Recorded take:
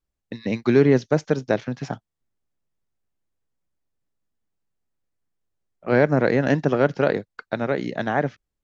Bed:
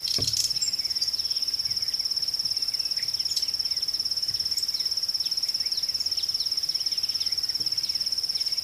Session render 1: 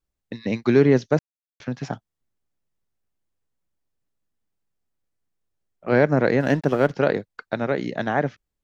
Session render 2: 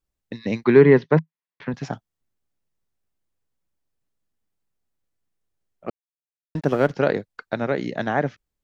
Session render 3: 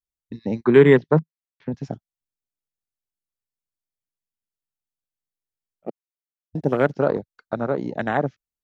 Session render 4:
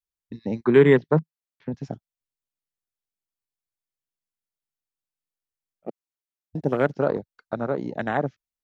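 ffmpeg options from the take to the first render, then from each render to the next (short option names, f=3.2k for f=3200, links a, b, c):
-filter_complex "[0:a]asettb=1/sr,asplit=3[a][b][c];[a]atrim=end=6.404[d];[b]atrim=start=6.4:end=6.92,asetpts=PTS-STARTPTS,afade=t=in:d=0.004:c=qsin,afade=t=out:st=0.516:d=0.004:c=qsin,aeval=exprs='sgn(val(0))*max(abs(val(0))-0.00841,0)':c=same[e];[c]atrim=start=6.916[f];[d][e]acrossfade=d=0.004:c1=hsin:c2=qsin[g];[g][f]acrossfade=d=0.004:c1=qsin:c2=hsin,asplit=3[h][i][j];[h]atrim=end=1.19,asetpts=PTS-STARTPTS,afade=t=out:st=1.186:d=0.004:c=hsin[k];[i]atrim=start=1.19:end=1.6,asetpts=PTS-STARTPTS,volume=0[l];[j]atrim=start=1.6,asetpts=PTS-STARTPTS,afade=t=in:d=0.004:c=hsin[m];[k][l][m]concat=n=3:v=0:a=1"
-filter_complex "[0:a]asettb=1/sr,asplit=3[a][b][c];[a]atrim=end=0.644[d];[b]atrim=start=0.64:end=1.74,asetpts=PTS-STARTPTS,afade=t=in:d=0.004:c=qsin,afade=t=out:st=1.096:d=0.004:c=qsin,highpass=130,equalizer=f=160:t=q:w=4:g=9,equalizer=f=410:t=q:w=4:g=5,equalizer=f=630:t=q:w=4:g=-3,equalizer=f=1k:t=q:w=4:g=10,equalizer=f=1.9k:t=q:w=4:g=8,lowpass=f=3.8k:w=0.5412,lowpass=f=3.8k:w=1.3066[e];[c]atrim=start=1.736[f];[d][e]acrossfade=d=0.004:c1=hsin:c2=qsin[g];[g][f]acrossfade=d=0.004:c1=qsin:c2=hsin,asplit=3[h][i][j];[h]atrim=end=5.9,asetpts=PTS-STARTPTS,afade=t=out:st=5.896:d=0.004:c=hsin[k];[i]atrim=start=5.9:end=6.55,asetpts=PTS-STARTPTS,volume=0[l];[j]atrim=start=6.55,asetpts=PTS-STARTPTS,afade=t=in:d=0.004:c=hsin[m];[k][l][m]concat=n=3:v=0:a=1"
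-af "afwtdn=0.0447,highshelf=f=3.3k:g=9.5"
-af "volume=-2.5dB"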